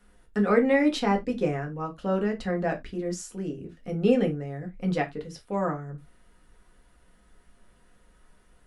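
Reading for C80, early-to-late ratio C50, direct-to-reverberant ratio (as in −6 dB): 26.0 dB, 16.0 dB, 2.0 dB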